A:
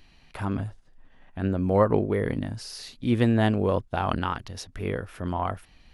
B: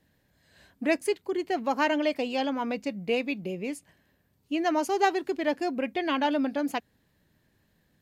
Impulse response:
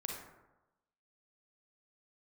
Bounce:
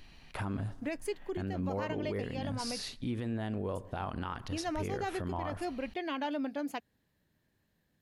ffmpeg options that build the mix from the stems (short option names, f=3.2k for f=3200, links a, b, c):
-filter_complex "[0:a]acompressor=threshold=-27dB:ratio=6,volume=0dB,asplit=2[a][b];[b]volume=-16dB[c];[1:a]volume=-7.5dB,asplit=3[d][e][f];[d]atrim=end=2.82,asetpts=PTS-STARTPTS,afade=t=out:st=2.816:d=0.004:c=hsin[g];[e]atrim=start=2.82:end=3.75,asetpts=PTS-STARTPTS,volume=0[h];[f]atrim=start=3.75,asetpts=PTS-STARTPTS,afade=t=in:d=0.004:c=hsin[i];[g][h][i]concat=n=3:v=0:a=1[j];[2:a]atrim=start_sample=2205[k];[c][k]afir=irnorm=-1:irlink=0[l];[a][j][l]amix=inputs=3:normalize=0,alimiter=level_in=2.5dB:limit=-24dB:level=0:latency=1:release=94,volume=-2.5dB"